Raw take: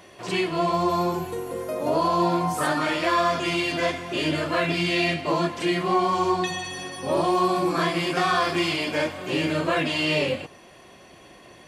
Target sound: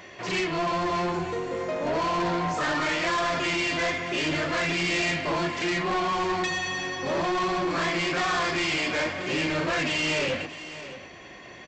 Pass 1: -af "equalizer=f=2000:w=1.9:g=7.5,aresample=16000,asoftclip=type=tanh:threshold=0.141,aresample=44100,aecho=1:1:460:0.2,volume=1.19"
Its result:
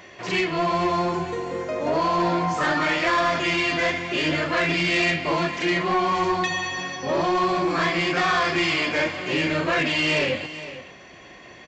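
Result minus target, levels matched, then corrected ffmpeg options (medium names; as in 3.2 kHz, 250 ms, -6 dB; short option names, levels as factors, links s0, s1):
echo 164 ms early; saturation: distortion -8 dB
-af "equalizer=f=2000:w=1.9:g=7.5,aresample=16000,asoftclip=type=tanh:threshold=0.0562,aresample=44100,aecho=1:1:624:0.2,volume=1.19"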